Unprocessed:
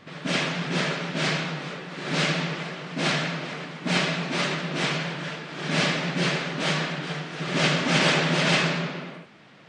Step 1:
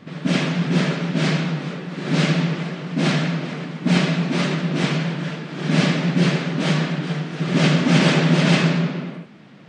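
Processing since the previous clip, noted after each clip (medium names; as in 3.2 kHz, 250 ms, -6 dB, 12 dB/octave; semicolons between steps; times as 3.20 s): peaking EQ 200 Hz +11 dB 1.9 oct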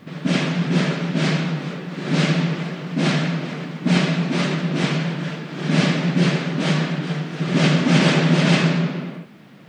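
bit crusher 11-bit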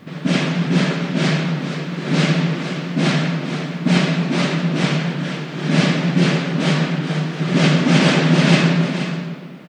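delay 474 ms -10 dB; trim +2 dB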